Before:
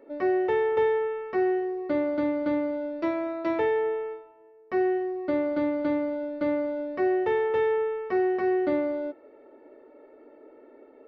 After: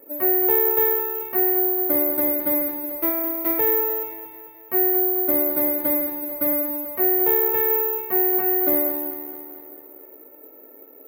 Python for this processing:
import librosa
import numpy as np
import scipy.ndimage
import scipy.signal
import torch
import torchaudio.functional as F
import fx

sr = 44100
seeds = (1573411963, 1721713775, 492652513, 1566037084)

y = fx.echo_feedback(x, sr, ms=219, feedback_pct=59, wet_db=-9)
y = (np.kron(y[::3], np.eye(3)[0]) * 3)[:len(y)]